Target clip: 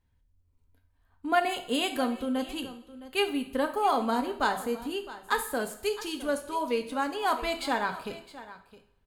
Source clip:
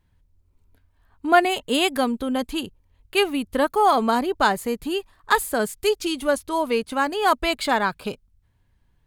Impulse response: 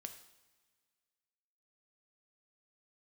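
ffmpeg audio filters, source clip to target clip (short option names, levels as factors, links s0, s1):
-filter_complex "[0:a]aecho=1:1:663:0.15[s0];[1:a]atrim=start_sample=2205,asetrate=61740,aresample=44100[s1];[s0][s1]afir=irnorm=-1:irlink=0"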